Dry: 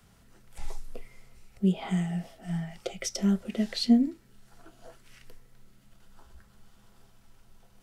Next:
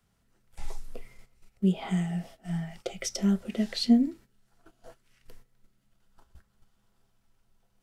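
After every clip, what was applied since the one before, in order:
noise gate −47 dBFS, range −12 dB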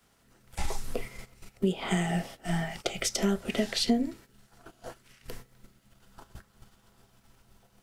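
ceiling on every frequency bin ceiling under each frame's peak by 13 dB
downward compressor 3 to 1, threshold −30 dBFS, peak gain reduction 11 dB
level +5 dB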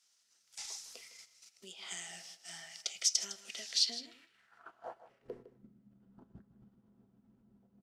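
band-pass filter sweep 5,700 Hz → 220 Hz, 0:03.77–0:05.67
single-tap delay 157 ms −14 dB
level +3.5 dB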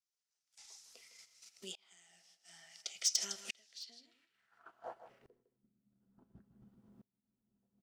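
hard clipping −21 dBFS, distortion −18 dB
tremolo with a ramp in dB swelling 0.57 Hz, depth 30 dB
level +5.5 dB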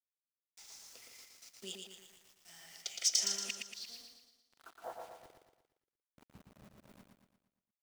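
bit reduction 10 bits
on a send: repeating echo 116 ms, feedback 49%, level −4.5 dB
on the sum: level +1.5 dB

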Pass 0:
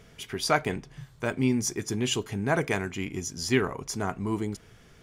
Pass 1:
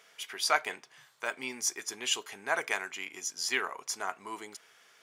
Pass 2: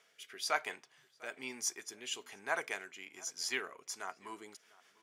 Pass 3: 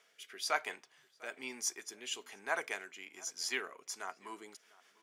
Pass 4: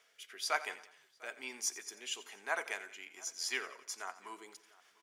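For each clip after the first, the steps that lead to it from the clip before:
high-pass filter 850 Hz 12 dB per octave
rotating-speaker cabinet horn 1.1 Hz, later 5.5 Hz, at 0:03.60; slap from a distant wall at 120 metres, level −22 dB; level −4.5 dB
high-pass filter 170 Hz 12 dB per octave
low-shelf EQ 240 Hz −11 dB; surface crackle 61 per second −61 dBFS; repeating echo 88 ms, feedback 49%, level −16 dB

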